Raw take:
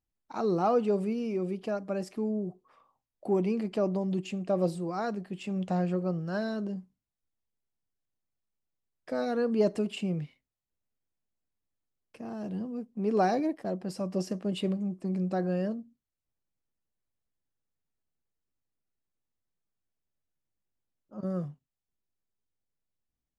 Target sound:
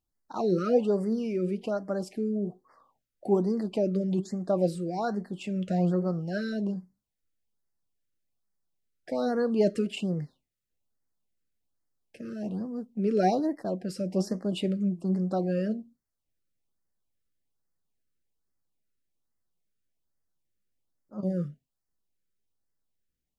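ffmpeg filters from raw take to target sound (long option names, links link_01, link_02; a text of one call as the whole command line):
ffmpeg -i in.wav -af "flanger=delay=2.9:depth=3.1:regen=84:speed=1.1:shape=triangular,afftfilt=real='re*(1-between(b*sr/1024,820*pow(3100/820,0.5+0.5*sin(2*PI*1.2*pts/sr))/1.41,820*pow(3100/820,0.5+0.5*sin(2*PI*1.2*pts/sr))*1.41))':imag='im*(1-between(b*sr/1024,820*pow(3100/820,0.5+0.5*sin(2*PI*1.2*pts/sr))/1.41,820*pow(3100/820,0.5+0.5*sin(2*PI*1.2*pts/sr))*1.41))':win_size=1024:overlap=0.75,volume=6.5dB" out.wav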